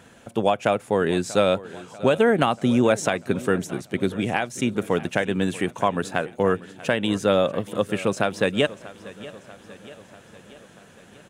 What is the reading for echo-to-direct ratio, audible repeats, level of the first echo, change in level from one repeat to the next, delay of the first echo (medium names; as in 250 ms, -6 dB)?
-16.5 dB, 4, -18.5 dB, -4.5 dB, 639 ms